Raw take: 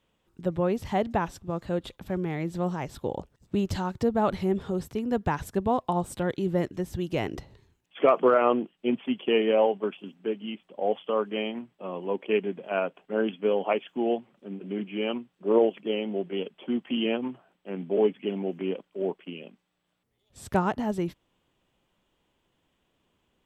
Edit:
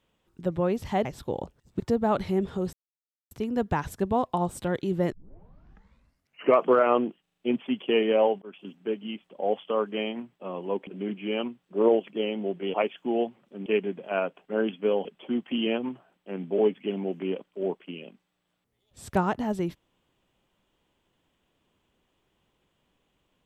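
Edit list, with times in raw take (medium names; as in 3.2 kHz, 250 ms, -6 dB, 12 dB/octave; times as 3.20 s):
1.05–2.81 s: delete
3.56–3.93 s: delete
4.86 s: insert silence 0.58 s
6.67 s: tape start 1.48 s
8.77 s: stutter 0.04 s, 5 plays
9.81–10.06 s: fade in
12.26–13.65 s: swap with 14.57–16.44 s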